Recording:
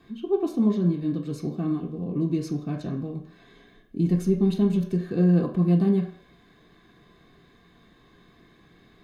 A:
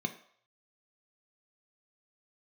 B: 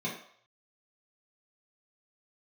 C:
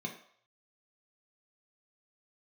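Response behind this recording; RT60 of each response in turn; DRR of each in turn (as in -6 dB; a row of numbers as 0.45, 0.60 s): C; 0.60, 0.60, 0.60 s; 6.0, -6.5, 0.5 dB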